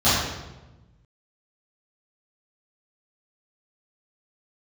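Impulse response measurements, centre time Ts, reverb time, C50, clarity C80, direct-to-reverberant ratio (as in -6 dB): 81 ms, 1.1 s, -1.0 dB, 2.0 dB, -14.5 dB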